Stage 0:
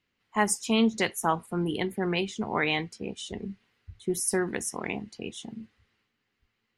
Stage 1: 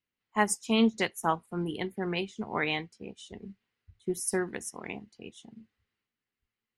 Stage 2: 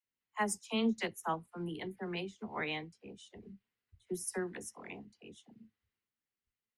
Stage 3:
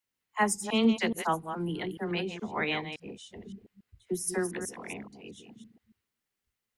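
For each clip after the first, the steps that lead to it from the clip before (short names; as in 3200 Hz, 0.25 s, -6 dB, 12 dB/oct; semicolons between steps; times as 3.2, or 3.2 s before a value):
upward expander 1.5:1, over -45 dBFS
dispersion lows, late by 47 ms, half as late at 460 Hz; gain -7.5 dB
reverse delay 0.141 s, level -8.5 dB; gain +6.5 dB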